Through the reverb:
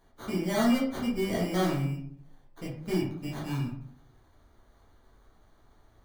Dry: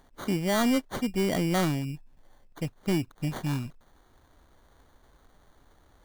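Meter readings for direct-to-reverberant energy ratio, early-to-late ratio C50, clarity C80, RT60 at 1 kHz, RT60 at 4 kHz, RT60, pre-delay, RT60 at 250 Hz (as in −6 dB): −6.5 dB, 4.0 dB, 9.0 dB, 0.60 s, 0.35 s, 0.65 s, 7 ms, 0.75 s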